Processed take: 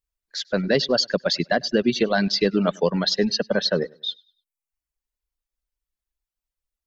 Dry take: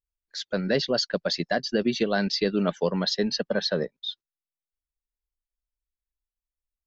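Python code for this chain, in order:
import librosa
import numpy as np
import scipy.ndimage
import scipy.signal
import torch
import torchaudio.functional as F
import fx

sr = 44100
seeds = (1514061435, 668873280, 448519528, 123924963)

p1 = x + fx.echo_feedback(x, sr, ms=100, feedback_pct=35, wet_db=-15, dry=0)
p2 = fx.dereverb_blind(p1, sr, rt60_s=0.66)
y = p2 * librosa.db_to_amplitude(4.5)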